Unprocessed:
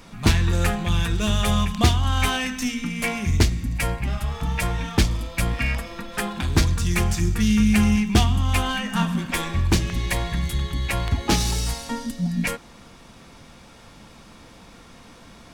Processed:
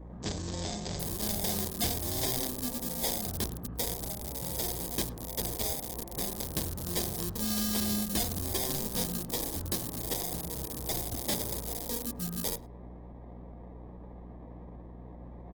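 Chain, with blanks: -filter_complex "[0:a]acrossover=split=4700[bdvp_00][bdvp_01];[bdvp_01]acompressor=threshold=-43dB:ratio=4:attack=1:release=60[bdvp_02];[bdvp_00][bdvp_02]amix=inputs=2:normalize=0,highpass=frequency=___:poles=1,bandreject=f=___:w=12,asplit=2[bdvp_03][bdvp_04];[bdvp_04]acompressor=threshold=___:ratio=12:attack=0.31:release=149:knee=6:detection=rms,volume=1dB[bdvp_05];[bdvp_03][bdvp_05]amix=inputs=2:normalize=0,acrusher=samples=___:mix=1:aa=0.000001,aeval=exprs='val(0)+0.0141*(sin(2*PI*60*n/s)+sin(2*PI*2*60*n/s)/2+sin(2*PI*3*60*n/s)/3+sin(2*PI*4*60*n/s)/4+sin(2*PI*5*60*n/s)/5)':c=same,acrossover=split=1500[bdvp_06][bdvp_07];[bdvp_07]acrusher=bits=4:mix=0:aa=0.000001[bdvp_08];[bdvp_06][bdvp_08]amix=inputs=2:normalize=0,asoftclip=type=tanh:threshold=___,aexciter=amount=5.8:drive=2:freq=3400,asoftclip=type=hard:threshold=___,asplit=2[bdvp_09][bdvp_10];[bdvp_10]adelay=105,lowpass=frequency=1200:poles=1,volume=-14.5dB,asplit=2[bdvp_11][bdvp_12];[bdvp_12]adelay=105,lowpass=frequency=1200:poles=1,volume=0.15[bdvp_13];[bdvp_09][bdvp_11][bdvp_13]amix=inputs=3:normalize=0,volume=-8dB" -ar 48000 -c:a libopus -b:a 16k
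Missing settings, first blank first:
300, 4900, -38dB, 31, -19.5dB, -11dB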